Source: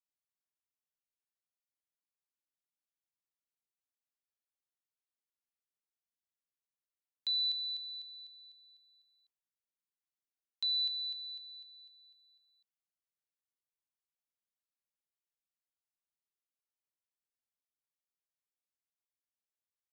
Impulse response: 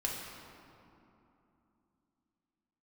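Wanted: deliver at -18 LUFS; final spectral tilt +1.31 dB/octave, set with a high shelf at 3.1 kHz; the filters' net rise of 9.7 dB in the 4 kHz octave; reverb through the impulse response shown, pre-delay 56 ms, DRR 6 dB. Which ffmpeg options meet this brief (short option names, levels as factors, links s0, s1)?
-filter_complex "[0:a]highshelf=f=3100:g=7.5,equalizer=f=4000:t=o:g=5,asplit=2[s0][s1];[1:a]atrim=start_sample=2205,adelay=56[s2];[s1][s2]afir=irnorm=-1:irlink=0,volume=0.316[s3];[s0][s3]amix=inputs=2:normalize=0,volume=1.78"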